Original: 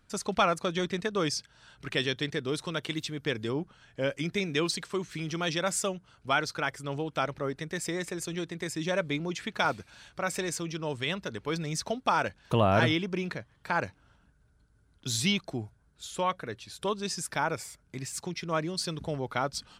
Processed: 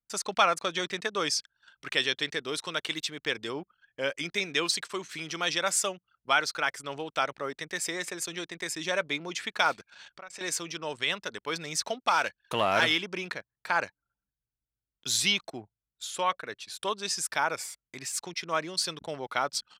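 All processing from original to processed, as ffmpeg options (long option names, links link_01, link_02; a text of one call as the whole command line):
ffmpeg -i in.wav -filter_complex "[0:a]asettb=1/sr,asplit=3[link_01][link_02][link_03];[link_01]atrim=end=9.934[link_04];[link_02]atrim=start=9.93:end=10.41,asetpts=PTS-STARTPTS,afade=type=in:duration=0.004:curve=qsin,afade=type=out:start_time=0.476:duration=0.004:curve=qsin,lowpass=6800,acompressor=threshold=-43dB:ratio=5:attack=3.2:release=140:knee=1:detection=peak[link_05];[link_03]atrim=start=10.406[link_06];[link_04][link_05]acrossfade=duration=0.004:curve1=hsin:curve2=qsin[link_07];[link_07][link_06]acrossfade=duration=0.004:curve1=qsin:curve2=hsin,asettb=1/sr,asplit=3[link_08][link_09][link_10];[link_08]atrim=end=11.994[link_11];[link_09]atrim=start=11.99:end=13.01,asetpts=PTS-STARTPTS,afade=type=in:duration=0.004:curve=qsin,afade=type=out:start_time=1.016:duration=0.004:curve=qsin,aeval=exprs='if(lt(val(0),0),0.708*val(0),val(0))':channel_layout=same,adynamicequalizer=threshold=0.0141:dfrequency=1800:dqfactor=0.7:tfrequency=1800:tqfactor=0.7:attack=5:release=100:ratio=0.375:range=2:mode=boostabove:tftype=highshelf[link_12];[link_10]atrim=start=13.006[link_13];[link_11][link_12]acrossfade=duration=0.004:curve1=hsin:curve2=qsin[link_14];[link_14][link_13]acrossfade=duration=0.004:curve1=qsin:curve2=hsin,highpass=frequency=910:poles=1,anlmdn=0.001,volume=4.5dB" out.wav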